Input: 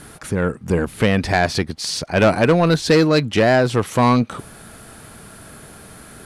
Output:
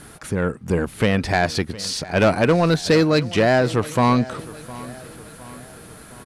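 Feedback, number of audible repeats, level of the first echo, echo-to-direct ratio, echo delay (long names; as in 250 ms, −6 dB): 51%, 3, −18.5 dB, −17.0 dB, 711 ms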